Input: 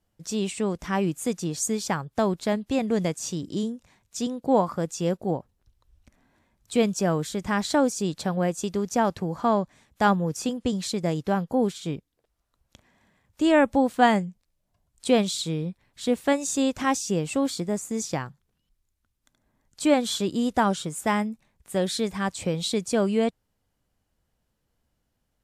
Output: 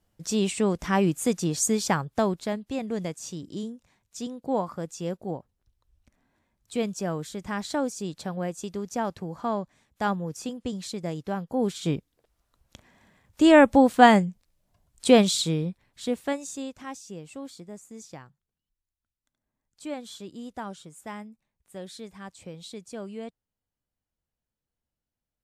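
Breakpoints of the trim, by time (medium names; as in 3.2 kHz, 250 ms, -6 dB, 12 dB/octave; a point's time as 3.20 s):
2.01 s +2.5 dB
2.61 s -6 dB
11.47 s -6 dB
11.87 s +4 dB
15.37 s +4 dB
16.34 s -6.5 dB
16.80 s -14.5 dB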